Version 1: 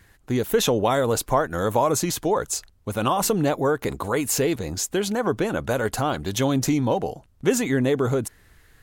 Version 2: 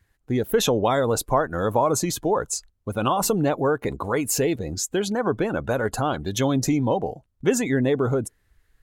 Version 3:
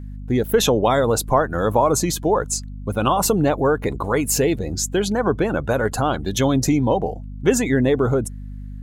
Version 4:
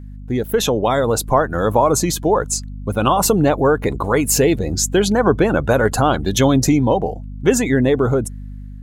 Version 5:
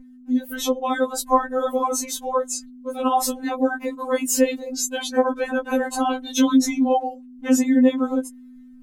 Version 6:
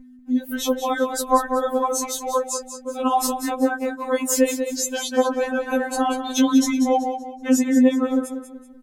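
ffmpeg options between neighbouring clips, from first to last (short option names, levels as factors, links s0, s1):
-af "afftdn=nr=14:nf=-36"
-af "aeval=exprs='val(0)+0.0178*(sin(2*PI*50*n/s)+sin(2*PI*2*50*n/s)/2+sin(2*PI*3*50*n/s)/3+sin(2*PI*4*50*n/s)/4+sin(2*PI*5*50*n/s)/5)':c=same,volume=1.5"
-af "dynaudnorm=f=700:g=3:m=3.76,volume=0.891"
-af "afftfilt=real='re*3.46*eq(mod(b,12),0)':imag='im*3.46*eq(mod(b,12),0)':win_size=2048:overlap=0.75,volume=0.668"
-af "aecho=1:1:190|380|570|760:0.335|0.111|0.0365|0.012"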